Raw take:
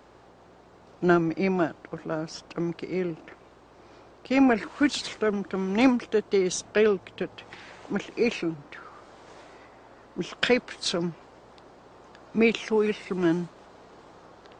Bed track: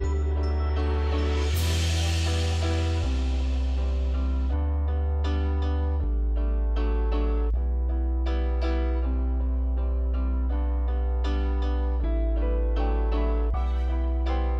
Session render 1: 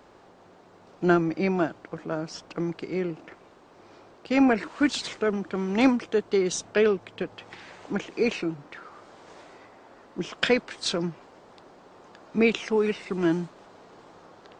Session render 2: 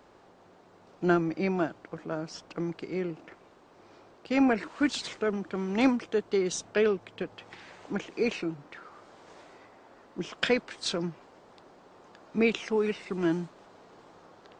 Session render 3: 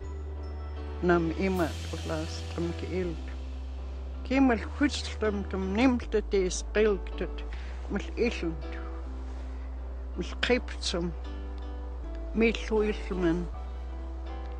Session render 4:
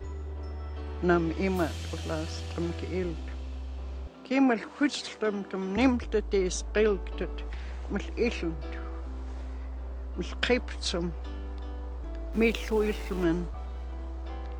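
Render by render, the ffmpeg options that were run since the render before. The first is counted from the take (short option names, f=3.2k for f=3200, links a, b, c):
-af "bandreject=f=60:t=h:w=4,bandreject=f=120:t=h:w=4"
-af "volume=-3.5dB"
-filter_complex "[1:a]volume=-12dB[a];[0:a][a]amix=inputs=2:normalize=0"
-filter_complex "[0:a]asettb=1/sr,asplit=3[a][b][c];[a]atrim=end=4.074[d];[b]atrim=start=4.07:end=5.77,asetpts=PTS-STARTPTS,afade=t=in:d=0.004:c=qsin,afade=t=out:st=1.696:d=0.004:c=qsin,highpass=f=160:w=0.5412,highpass=f=160:w=1.3066[e];[c]atrim=start=5.766[f];[d][e]acrossfade=d=0.004:c1=hsin:c2=qsin[g];[g][f]acrossfade=d=0.004:c1=qsin:c2=hsin,asettb=1/sr,asplit=3[h][i][j];[h]atrim=end=12.334[k];[i]atrim=start=12.33:end=13.24,asetpts=PTS-STARTPTS,afade=t=in:d=0.004:c=qsin,afade=t=out:st=0.906:d=0.004:c=qsin,aeval=exprs='val(0)*gte(abs(val(0)),0.00944)':c=same[l];[j]atrim=start=13.236[m];[k][l]acrossfade=d=0.004:c1=hsin:c2=qsin[n];[n][m]acrossfade=d=0.004:c1=qsin:c2=hsin"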